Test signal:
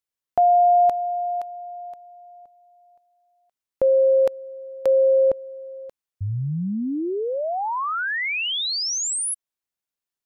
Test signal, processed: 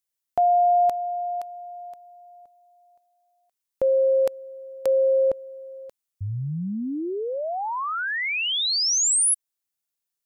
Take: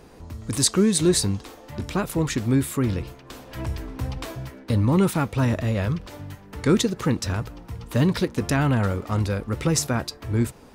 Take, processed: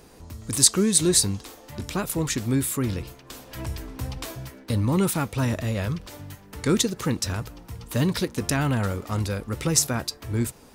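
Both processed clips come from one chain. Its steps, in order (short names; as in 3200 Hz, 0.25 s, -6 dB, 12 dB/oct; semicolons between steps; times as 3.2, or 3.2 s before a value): high shelf 4400 Hz +10 dB; gain -3 dB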